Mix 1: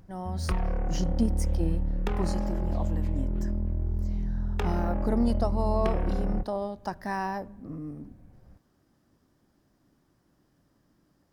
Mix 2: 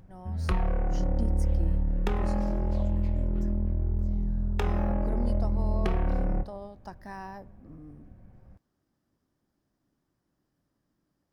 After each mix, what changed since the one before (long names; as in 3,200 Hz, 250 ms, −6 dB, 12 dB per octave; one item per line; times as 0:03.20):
speech −10.0 dB
background: send +7.0 dB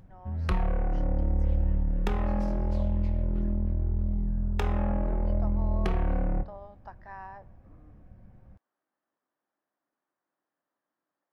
speech: add band-pass filter 620–2,100 Hz
master: add parametric band 400 Hz −2 dB 0.43 octaves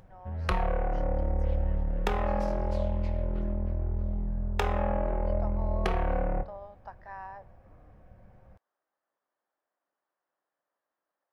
background +4.0 dB
master: add low shelf with overshoot 380 Hz −6.5 dB, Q 1.5